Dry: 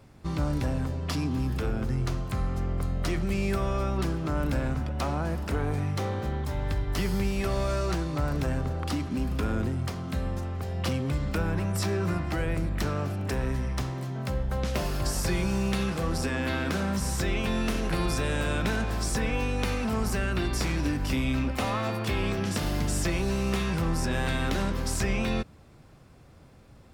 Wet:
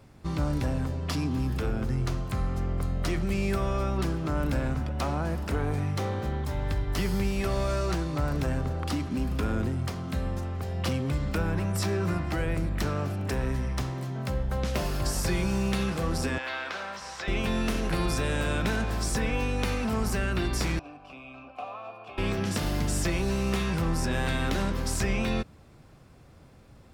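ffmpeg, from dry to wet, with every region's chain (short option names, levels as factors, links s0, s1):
-filter_complex "[0:a]asettb=1/sr,asplit=3[s0][s1][s2];[s0]atrim=end=16.384[s3];[s1]atrim=start=16.38:end=17.28,asetpts=PTS-STARTPTS,afade=t=in:d=0.004:c=qsin,afade=t=out:st=0.896:d=0.004:c=qsin,highpass=49,acrossover=split=560 5800:gain=0.0631 1 0.224[s4][s5][s6];[s4][s5][s6]amix=inputs=3:normalize=0,acrossover=split=6800[s7][s8];[s8]acompressor=threshold=0.00112:ratio=4:attack=1:release=60[s9];[s7][s9]amix=inputs=2:normalize=0[s10];[s2]atrim=start=17.276[s11];[s3][s10]acrossfade=d=0.004:c1=hsin:c2=qsin[s12];[s12][s11]acrossfade=d=0.004:c1=qsin:c2=hsin,asettb=1/sr,asplit=3[s13][s14][s15];[s13]atrim=end=20.794[s16];[s14]atrim=start=20.79:end=22.18,asetpts=PTS-STARTPTS,afade=t=in:d=0.004:c=qsin,afade=t=out:st=1.386:d=0.004:c=qsin,asplit=3[s17][s18][s19];[s17]bandpass=f=730:t=q:w=8,volume=1[s20];[s18]bandpass=f=1090:t=q:w=8,volume=0.501[s21];[s19]bandpass=f=2440:t=q:w=8,volume=0.355[s22];[s20][s21][s22]amix=inputs=3:normalize=0,lowshelf=f=100:g=10,aecho=1:1:6.9:0.33,atrim=end_sample=61299[s23];[s15]atrim=start=22.176[s24];[s16][s23]acrossfade=d=0.004:c1=hsin:c2=qsin[s25];[s25][s24]acrossfade=d=0.004:c1=qsin:c2=hsin"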